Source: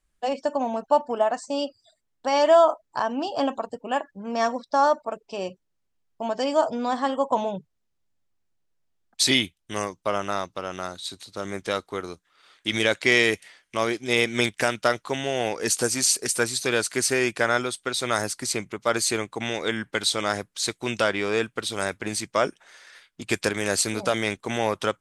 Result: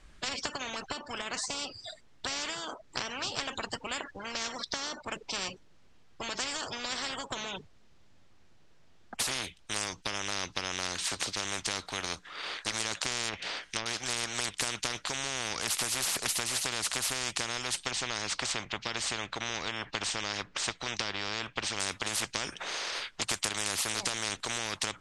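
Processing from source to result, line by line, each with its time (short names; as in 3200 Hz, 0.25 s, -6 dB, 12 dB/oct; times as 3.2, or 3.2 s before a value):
13.28–13.86 treble ducked by the level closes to 1300 Hz, closed at -19.5 dBFS
17.91–21.8 air absorption 140 m
whole clip: LPF 5300 Hz 12 dB/oct; compressor 6:1, threshold -26 dBFS; spectral compressor 10:1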